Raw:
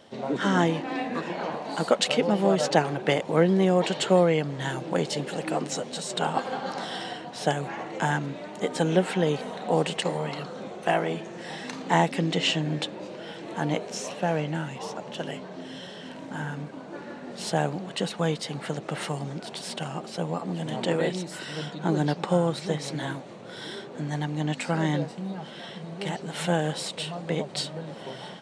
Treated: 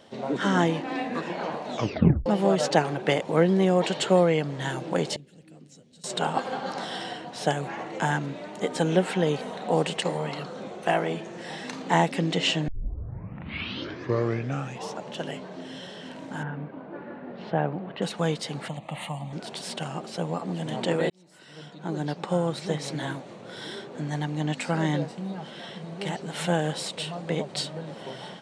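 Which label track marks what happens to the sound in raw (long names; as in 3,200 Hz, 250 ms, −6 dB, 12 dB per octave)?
1.650000	1.650000	tape stop 0.61 s
5.160000	6.040000	guitar amp tone stack bass-middle-treble 10-0-1
12.680000	12.680000	tape start 2.18 s
16.430000	18.020000	Bessel low-pass filter 1,900 Hz, order 4
18.680000	19.330000	phaser with its sweep stopped centre 1,500 Hz, stages 6
21.100000	22.780000	fade in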